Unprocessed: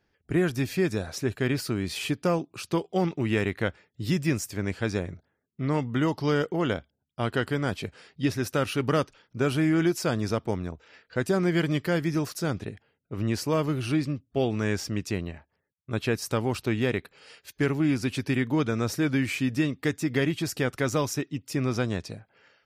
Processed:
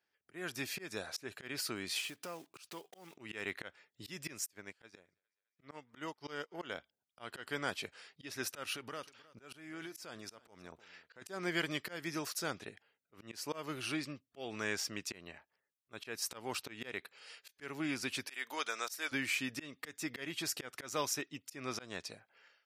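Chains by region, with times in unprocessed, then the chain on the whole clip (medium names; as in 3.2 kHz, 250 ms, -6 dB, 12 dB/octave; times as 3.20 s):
2.00–3.18 s: block-companded coder 5-bit + compression 2.5:1, threshold -37 dBFS
4.46–6.62 s: thinning echo 208 ms, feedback 76%, high-pass 580 Hz, level -23.5 dB + upward expansion 2.5:1, over -40 dBFS
8.72–11.22 s: compression 16:1, threshold -30 dBFS + delay 311 ms -20 dB
18.27–19.12 s: high-pass 610 Hz + treble shelf 4.8 kHz +9.5 dB
whole clip: high-pass 1.1 kHz 6 dB/octave; level rider gain up to 5.5 dB; slow attack 196 ms; trim -7.5 dB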